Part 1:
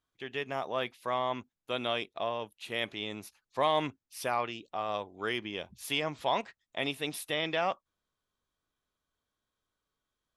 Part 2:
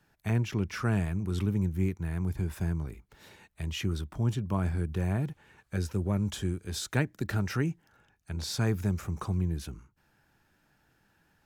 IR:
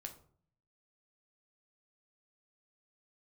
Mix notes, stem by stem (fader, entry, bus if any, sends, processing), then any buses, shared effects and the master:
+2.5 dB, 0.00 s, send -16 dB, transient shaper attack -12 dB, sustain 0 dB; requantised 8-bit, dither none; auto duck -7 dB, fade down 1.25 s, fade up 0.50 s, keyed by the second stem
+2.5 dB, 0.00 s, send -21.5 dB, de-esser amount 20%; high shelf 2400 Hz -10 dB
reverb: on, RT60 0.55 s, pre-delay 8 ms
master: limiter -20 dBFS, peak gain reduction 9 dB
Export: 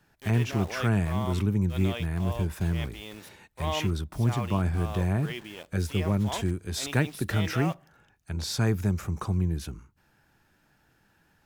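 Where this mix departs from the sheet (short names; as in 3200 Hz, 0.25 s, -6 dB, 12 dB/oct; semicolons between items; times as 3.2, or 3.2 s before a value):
stem 2: missing high shelf 2400 Hz -10 dB; master: missing limiter -20 dBFS, peak gain reduction 9 dB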